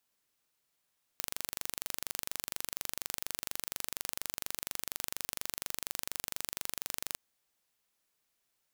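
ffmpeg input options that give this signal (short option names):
-f lavfi -i "aevalsrc='0.398*eq(mod(n,1822),0)':d=5.99:s=44100"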